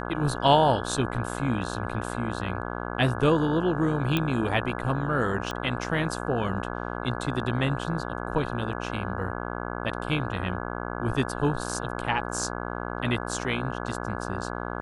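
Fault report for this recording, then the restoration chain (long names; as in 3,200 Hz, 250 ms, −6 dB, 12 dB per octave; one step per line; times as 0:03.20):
mains buzz 60 Hz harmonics 28 −33 dBFS
0:04.17: click −12 dBFS
0:05.51: click −18 dBFS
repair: click removal
hum removal 60 Hz, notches 28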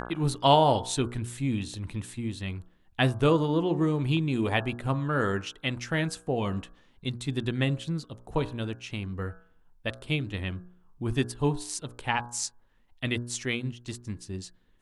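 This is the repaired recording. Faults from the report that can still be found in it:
none of them is left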